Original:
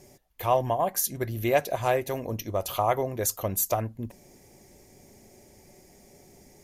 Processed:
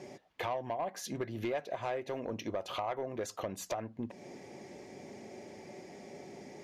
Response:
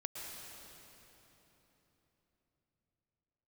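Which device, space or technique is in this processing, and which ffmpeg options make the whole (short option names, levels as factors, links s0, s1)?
AM radio: -af "highpass=190,lowpass=3600,acompressor=threshold=0.00794:ratio=4,asoftclip=type=tanh:threshold=0.0188,volume=2.51"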